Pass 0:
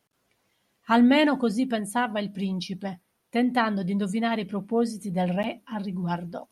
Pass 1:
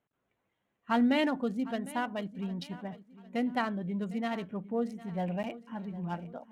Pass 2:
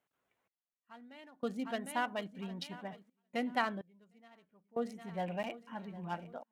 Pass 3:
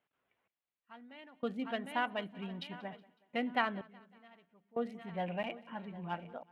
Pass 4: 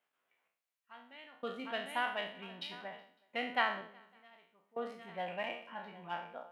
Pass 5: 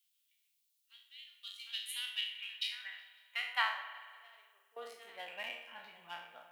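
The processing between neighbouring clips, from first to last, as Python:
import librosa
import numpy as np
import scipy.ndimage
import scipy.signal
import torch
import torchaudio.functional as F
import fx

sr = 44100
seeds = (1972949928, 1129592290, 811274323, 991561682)

y1 = fx.wiener(x, sr, points=9)
y1 = fx.echo_feedback(y1, sr, ms=755, feedback_pct=38, wet_db=-18.0)
y1 = F.gain(torch.from_numpy(y1), -7.5).numpy()
y2 = fx.low_shelf(y1, sr, hz=380.0, db=-10.5)
y2 = fx.step_gate(y2, sr, bpm=63, pattern='xx....xxxxxxx.', floor_db=-24.0, edge_ms=4.5)
y2 = F.gain(torch.from_numpy(y2), 1.0).numpy()
y3 = fx.high_shelf_res(y2, sr, hz=4300.0, db=-11.0, q=1.5)
y3 = fx.echo_feedback(y3, sr, ms=185, feedback_pct=49, wet_db=-23.0)
y4 = fx.spec_trails(y3, sr, decay_s=0.52)
y4 = fx.highpass(y4, sr, hz=620.0, slope=6)
y5 = np.diff(y4, prepend=0.0)
y5 = fx.filter_sweep_highpass(y5, sr, from_hz=3600.0, to_hz=150.0, start_s=2.01, end_s=5.88, q=2.2)
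y5 = fx.rev_spring(y5, sr, rt60_s=1.8, pass_ms=(47,), chirp_ms=65, drr_db=10.0)
y5 = F.gain(torch.from_numpy(y5), 9.5).numpy()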